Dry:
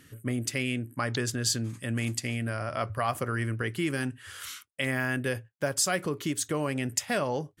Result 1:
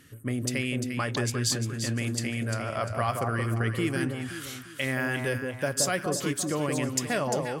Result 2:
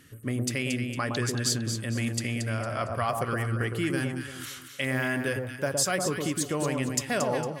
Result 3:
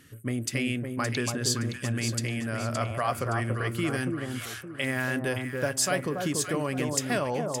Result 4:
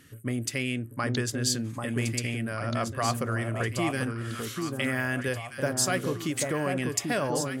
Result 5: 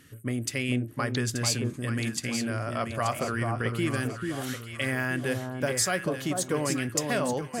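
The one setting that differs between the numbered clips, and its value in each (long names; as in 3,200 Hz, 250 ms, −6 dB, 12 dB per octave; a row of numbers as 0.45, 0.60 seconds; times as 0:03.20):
delay that swaps between a low-pass and a high-pass, delay time: 174, 114, 284, 790, 440 milliseconds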